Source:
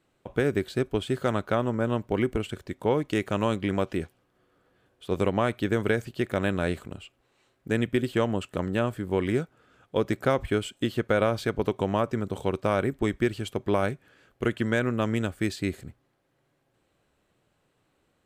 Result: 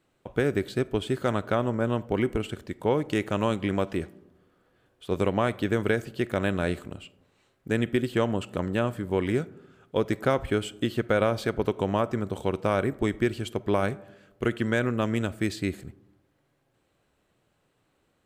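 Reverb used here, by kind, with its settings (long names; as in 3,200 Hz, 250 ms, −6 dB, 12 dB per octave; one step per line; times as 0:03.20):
comb and all-pass reverb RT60 1 s, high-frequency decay 0.3×, pre-delay 5 ms, DRR 19.5 dB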